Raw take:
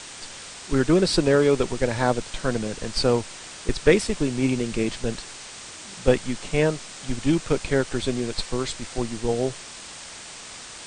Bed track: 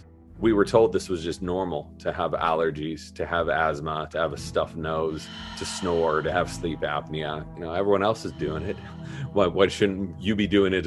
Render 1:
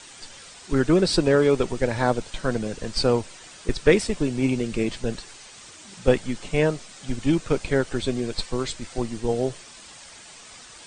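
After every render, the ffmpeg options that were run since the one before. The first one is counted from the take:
-af "afftdn=nr=8:nf=-40"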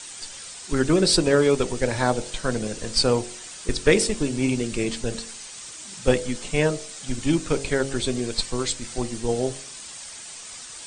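-af "aemphasis=mode=production:type=50kf,bandreject=f=45.28:t=h:w=4,bandreject=f=90.56:t=h:w=4,bandreject=f=135.84:t=h:w=4,bandreject=f=181.12:t=h:w=4,bandreject=f=226.4:t=h:w=4,bandreject=f=271.68:t=h:w=4,bandreject=f=316.96:t=h:w=4,bandreject=f=362.24:t=h:w=4,bandreject=f=407.52:t=h:w=4,bandreject=f=452.8:t=h:w=4,bandreject=f=498.08:t=h:w=4,bandreject=f=543.36:t=h:w=4,bandreject=f=588.64:t=h:w=4,bandreject=f=633.92:t=h:w=4,bandreject=f=679.2:t=h:w=4,bandreject=f=724.48:t=h:w=4,bandreject=f=769.76:t=h:w=4,bandreject=f=815.04:t=h:w=4,bandreject=f=860.32:t=h:w=4"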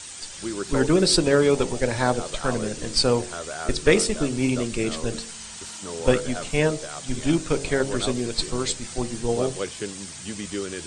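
-filter_complex "[1:a]volume=0.299[s0];[0:a][s0]amix=inputs=2:normalize=0"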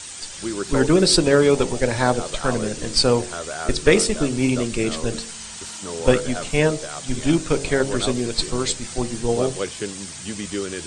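-af "volume=1.41,alimiter=limit=0.891:level=0:latency=1"

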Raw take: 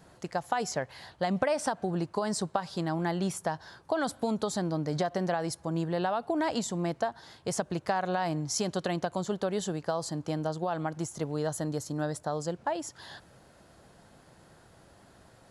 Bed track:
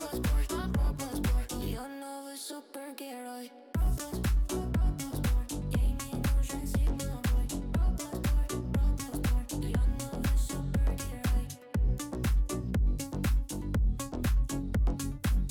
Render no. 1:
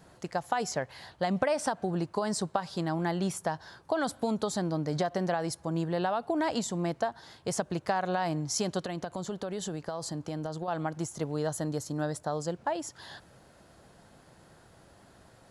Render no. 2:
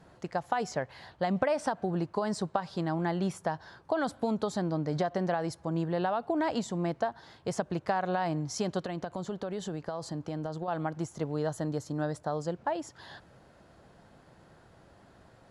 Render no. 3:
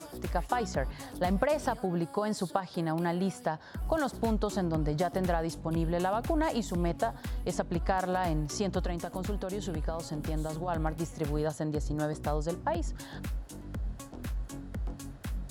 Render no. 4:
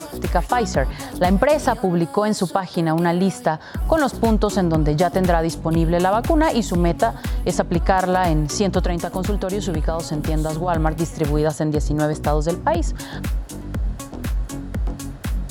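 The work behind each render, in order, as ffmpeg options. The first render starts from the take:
-filter_complex "[0:a]asettb=1/sr,asplit=3[s0][s1][s2];[s0]atrim=end=8.854[s3];[s1]atrim=start=8.85:end=10.68,asetpts=PTS-STARTPTS,afade=t=in:d=0.004:c=qsin,afade=t=out:st=1.826:d=0.004:c=qsin,acompressor=threshold=0.0282:ratio=4:attack=3.2:release=140:knee=1:detection=peak[s4];[s2]atrim=start=10.676[s5];[s3][s4]acrossfade=d=0.004:c1=hsin:c2=qsin[s6];[s6][s5]acrossfade=d=0.004:c1=qsin:c2=hsin"
-af "aemphasis=mode=reproduction:type=50kf"
-filter_complex "[1:a]volume=0.398[s0];[0:a][s0]amix=inputs=2:normalize=0"
-af "volume=3.98,alimiter=limit=0.708:level=0:latency=1"

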